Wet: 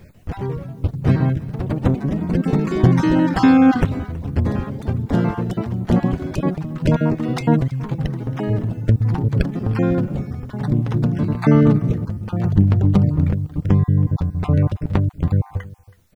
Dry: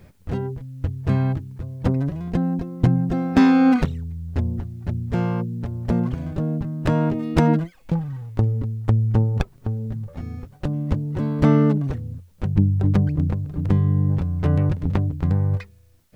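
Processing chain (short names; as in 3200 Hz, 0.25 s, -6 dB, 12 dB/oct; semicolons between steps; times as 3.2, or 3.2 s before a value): random spectral dropouts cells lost 28%; echo 0.324 s -20.5 dB; echoes that change speed 0.145 s, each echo +3 st, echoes 3, each echo -6 dB; gain +3.5 dB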